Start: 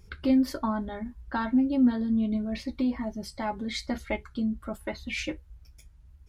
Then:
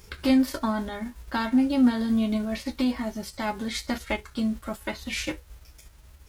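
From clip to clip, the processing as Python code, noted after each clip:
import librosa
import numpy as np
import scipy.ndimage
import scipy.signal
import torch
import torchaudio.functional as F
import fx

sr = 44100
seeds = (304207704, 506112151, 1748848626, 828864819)

y = fx.envelope_flatten(x, sr, power=0.6)
y = y * 10.0 ** (2.0 / 20.0)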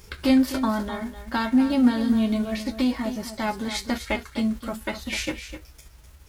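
y = x + 10.0 ** (-11.0 / 20.0) * np.pad(x, (int(254 * sr / 1000.0), 0))[:len(x)]
y = y * 10.0 ** (2.0 / 20.0)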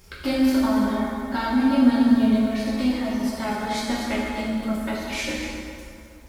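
y = fx.rev_plate(x, sr, seeds[0], rt60_s=2.5, hf_ratio=0.6, predelay_ms=0, drr_db=-5.0)
y = y * 10.0 ** (-4.5 / 20.0)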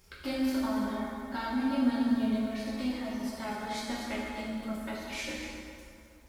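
y = fx.low_shelf(x, sr, hz=450.0, db=-2.5)
y = y * 10.0 ** (-8.5 / 20.0)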